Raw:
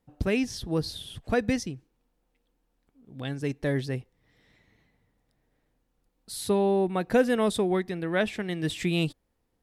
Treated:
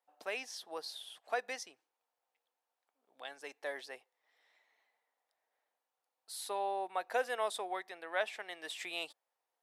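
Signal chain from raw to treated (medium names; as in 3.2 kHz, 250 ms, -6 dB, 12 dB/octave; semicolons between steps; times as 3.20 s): ladder high-pass 590 Hz, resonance 35%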